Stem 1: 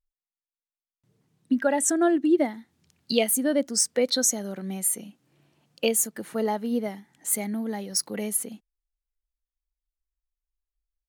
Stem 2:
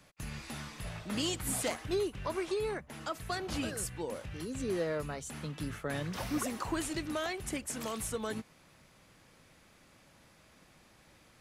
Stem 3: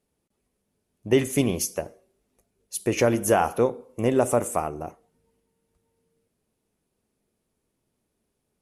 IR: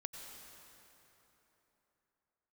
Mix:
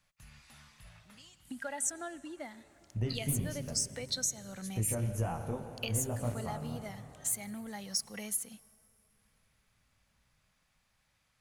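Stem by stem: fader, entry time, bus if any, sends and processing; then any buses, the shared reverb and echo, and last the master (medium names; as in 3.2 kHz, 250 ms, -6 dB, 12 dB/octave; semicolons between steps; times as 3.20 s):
-0.5 dB, 0.00 s, bus A, send -22.5 dB, none
-13.0 dB, 0.00 s, no bus, send -11 dB, auto duck -23 dB, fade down 0.40 s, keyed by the first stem
-9.5 dB, 1.90 s, bus A, send -3 dB, tilt shelf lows +6.5 dB, about 810 Hz; chorus 1.8 Hz, delay 17 ms, depth 3.3 ms; bass shelf 250 Hz +11.5 dB
bus A: 0.0 dB, peaking EQ 6.5 kHz +5.5 dB; compression 6:1, threshold -32 dBFS, peak gain reduction 16.5 dB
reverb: on, RT60 3.5 s, pre-delay 83 ms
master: peaking EQ 350 Hz -14.5 dB 1.5 oct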